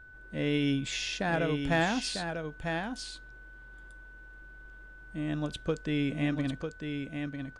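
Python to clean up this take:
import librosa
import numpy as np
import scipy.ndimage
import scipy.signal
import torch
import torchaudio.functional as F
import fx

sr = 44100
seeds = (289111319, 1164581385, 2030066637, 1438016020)

y = fx.fix_declip(x, sr, threshold_db=-18.5)
y = fx.notch(y, sr, hz=1500.0, q=30.0)
y = fx.fix_echo_inverse(y, sr, delay_ms=948, level_db=-6.0)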